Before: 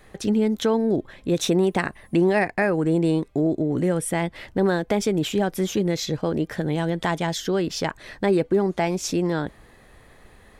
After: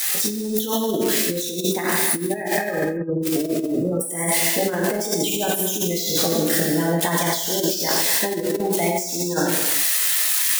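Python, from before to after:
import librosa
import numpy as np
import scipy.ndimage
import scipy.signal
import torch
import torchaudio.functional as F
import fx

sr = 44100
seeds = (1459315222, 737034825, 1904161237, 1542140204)

y = x + 0.5 * 10.0 ** (-15.0 / 20.0) * np.diff(np.sign(x), prepend=np.sign(x[:1]))
y = fx.highpass(y, sr, hz=340.0, slope=6)
y = fx.spec_gate(y, sr, threshold_db=-15, keep='strong')
y = fx.rev_gated(y, sr, seeds[0], gate_ms=430, shape='falling', drr_db=-4.0)
y = fx.over_compress(y, sr, threshold_db=-21.0, ratio=-0.5)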